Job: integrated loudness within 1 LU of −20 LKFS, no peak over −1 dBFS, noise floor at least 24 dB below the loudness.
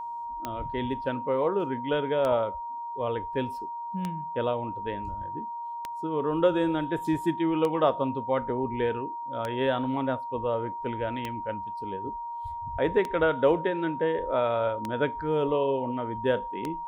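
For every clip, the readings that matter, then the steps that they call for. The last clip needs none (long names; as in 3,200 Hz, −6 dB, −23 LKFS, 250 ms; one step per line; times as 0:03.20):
number of clicks 10; interfering tone 940 Hz; level of the tone −33 dBFS; integrated loudness −29.0 LKFS; sample peak −10.5 dBFS; target loudness −20.0 LKFS
→ click removal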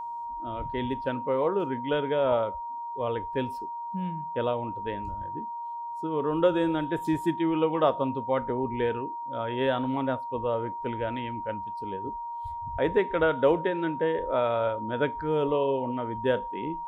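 number of clicks 0; interfering tone 940 Hz; level of the tone −33 dBFS
→ notch filter 940 Hz, Q 30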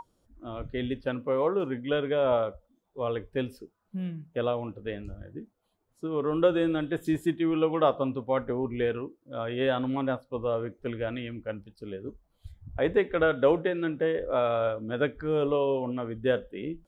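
interfering tone none found; integrated loudness −29.0 LKFS; sample peak −11.0 dBFS; target loudness −20.0 LKFS
→ level +9 dB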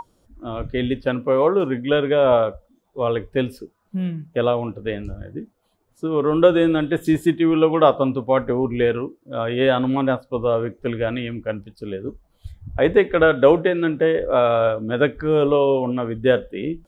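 integrated loudness −20.0 LKFS; sample peak −2.0 dBFS; background noise floor −64 dBFS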